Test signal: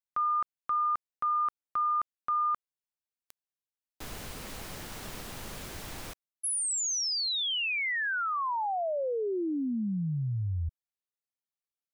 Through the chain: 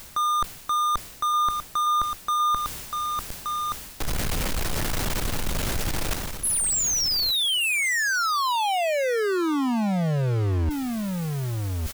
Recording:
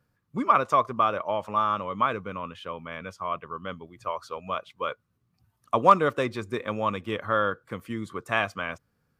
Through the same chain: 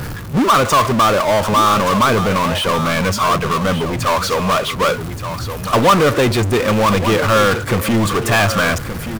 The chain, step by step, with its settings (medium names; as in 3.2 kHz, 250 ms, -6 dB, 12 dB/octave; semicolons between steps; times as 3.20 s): bass shelf 96 Hz +10 dB; power-law waveshaper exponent 0.35; delay 1174 ms -10.5 dB; reverse; upward compressor, threshold -21 dBFS; reverse